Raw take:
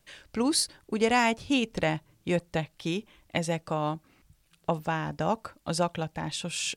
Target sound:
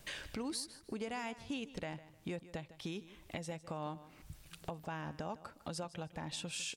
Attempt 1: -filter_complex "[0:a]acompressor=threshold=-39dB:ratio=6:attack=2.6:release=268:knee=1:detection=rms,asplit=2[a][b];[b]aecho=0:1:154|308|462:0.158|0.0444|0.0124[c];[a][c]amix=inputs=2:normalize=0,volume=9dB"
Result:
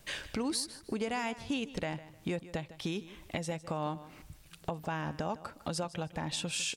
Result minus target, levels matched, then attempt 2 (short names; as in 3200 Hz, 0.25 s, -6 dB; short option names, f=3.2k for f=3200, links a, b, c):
compressor: peak gain reduction -6.5 dB
-filter_complex "[0:a]acompressor=threshold=-47dB:ratio=6:attack=2.6:release=268:knee=1:detection=rms,asplit=2[a][b];[b]aecho=0:1:154|308|462:0.158|0.0444|0.0124[c];[a][c]amix=inputs=2:normalize=0,volume=9dB"